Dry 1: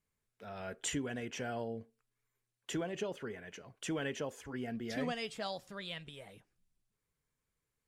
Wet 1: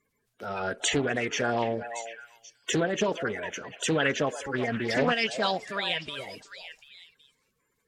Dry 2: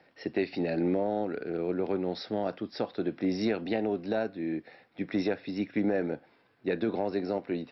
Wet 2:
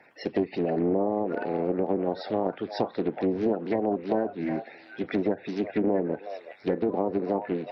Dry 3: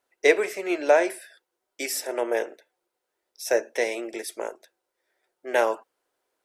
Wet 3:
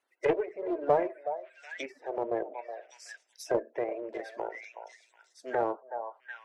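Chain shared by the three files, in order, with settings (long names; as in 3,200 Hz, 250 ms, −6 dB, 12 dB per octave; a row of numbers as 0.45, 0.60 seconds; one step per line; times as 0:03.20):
spectral magnitudes quantised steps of 30 dB
low-shelf EQ 170 Hz −11 dB
on a send: echo through a band-pass that steps 371 ms, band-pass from 790 Hz, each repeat 1.4 octaves, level −8 dB
on the sum: treble cut that deepens with the level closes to 740 Hz, closed at −27 dBFS
in parallel at −9 dB: asymmetric clip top −21.5 dBFS
on the sum: highs frequency-modulated by the lows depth 0.27 ms
normalise the peak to −12 dBFS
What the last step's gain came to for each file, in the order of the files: +11.5, +4.0, −5.0 decibels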